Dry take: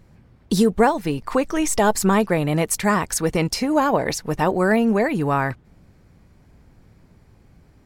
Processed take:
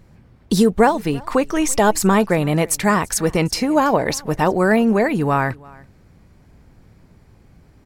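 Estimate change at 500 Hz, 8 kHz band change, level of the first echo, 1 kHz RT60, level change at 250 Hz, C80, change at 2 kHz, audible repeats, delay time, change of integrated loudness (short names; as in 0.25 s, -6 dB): +2.5 dB, +2.5 dB, -24.0 dB, none, +2.5 dB, none, +2.5 dB, 1, 0.334 s, +2.5 dB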